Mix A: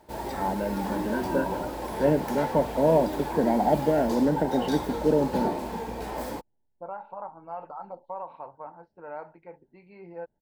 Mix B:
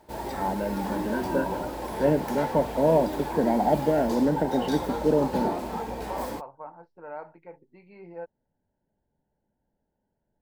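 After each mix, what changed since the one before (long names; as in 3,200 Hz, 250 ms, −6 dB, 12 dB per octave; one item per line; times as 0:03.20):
second voice: entry −2.00 s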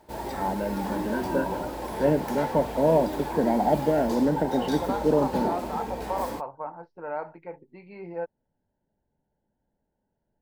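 second voice +6.0 dB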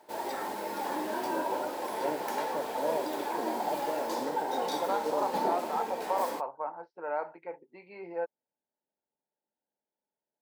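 first voice −11.0 dB
master: add high-pass filter 370 Hz 12 dB per octave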